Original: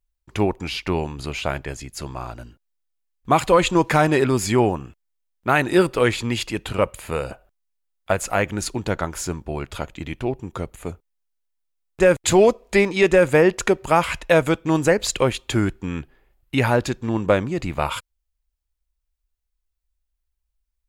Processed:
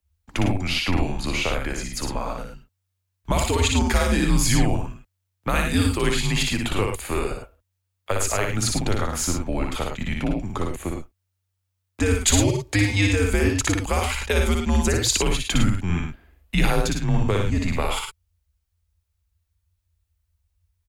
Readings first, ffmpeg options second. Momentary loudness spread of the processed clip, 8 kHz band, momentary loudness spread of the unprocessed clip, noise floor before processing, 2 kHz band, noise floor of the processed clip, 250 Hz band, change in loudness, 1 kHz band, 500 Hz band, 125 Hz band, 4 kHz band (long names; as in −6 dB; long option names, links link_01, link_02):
10 LU, +5.0 dB, 16 LU, −77 dBFS, −2.0 dB, −77 dBFS, −1.5 dB, −2.5 dB, −5.5 dB, −8.0 dB, +3.0 dB, +3.5 dB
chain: -filter_complex "[0:a]afreqshift=-93,acrossover=split=130|3000[link_01][link_02][link_03];[link_02]acompressor=threshold=-27dB:ratio=6[link_04];[link_01][link_04][link_03]amix=inputs=3:normalize=0,aecho=1:1:59|102|110:0.668|0.299|0.376,volume=3dB"